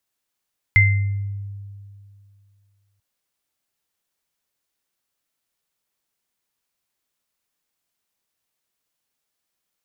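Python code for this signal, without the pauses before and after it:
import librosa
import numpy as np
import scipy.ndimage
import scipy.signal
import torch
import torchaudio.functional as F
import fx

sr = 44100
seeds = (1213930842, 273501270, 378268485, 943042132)

y = fx.additive_free(sr, length_s=2.24, hz=100.0, level_db=-12, upper_db=(3.0,), decay_s=2.44, upper_decays_s=(0.56,), upper_hz=(2080.0,))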